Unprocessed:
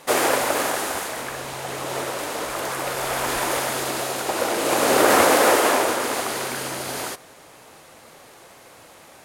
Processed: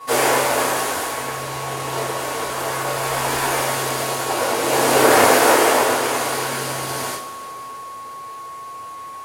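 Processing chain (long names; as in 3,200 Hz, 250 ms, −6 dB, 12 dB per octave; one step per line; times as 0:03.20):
steady tone 1,100 Hz −37 dBFS
coupled-rooms reverb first 0.4 s, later 3.6 s, from −19 dB, DRR −9 dB
level −6.5 dB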